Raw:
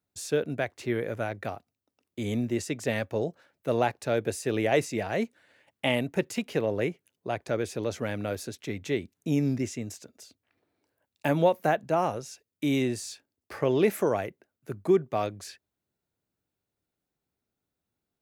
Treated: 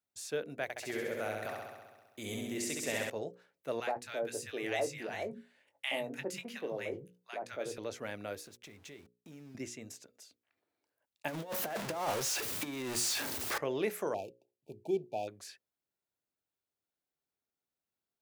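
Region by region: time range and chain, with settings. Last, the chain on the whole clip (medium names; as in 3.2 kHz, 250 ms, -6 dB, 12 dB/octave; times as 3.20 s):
0.63–3.10 s: treble shelf 6.3 kHz +10 dB + flutter echo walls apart 11.3 m, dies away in 1.3 s
3.80–7.78 s: doubling 21 ms -10 dB + three bands offset in time highs, mids, lows 70/160 ms, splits 200/1100 Hz
8.40–9.55 s: bass shelf 110 Hz +9 dB + compression 4:1, threshold -39 dBFS + small samples zeroed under -52 dBFS
11.28–13.58 s: jump at every zero crossing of -26 dBFS + compressor with a negative ratio -25 dBFS, ratio -0.5
14.14–15.28 s: median filter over 15 samples + brick-wall FIR band-stop 920–2300 Hz
whole clip: bass shelf 280 Hz -11 dB; hum notches 60/120/180/240/300/360/420/480/540 Hz; trim -6 dB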